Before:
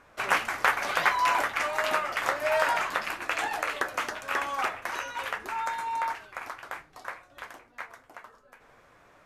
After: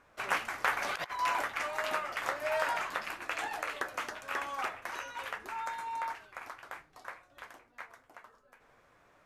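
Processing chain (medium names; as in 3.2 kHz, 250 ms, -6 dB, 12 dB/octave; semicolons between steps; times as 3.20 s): 0.71–1.19 s: compressor with a negative ratio -30 dBFS, ratio -0.5; trim -6.5 dB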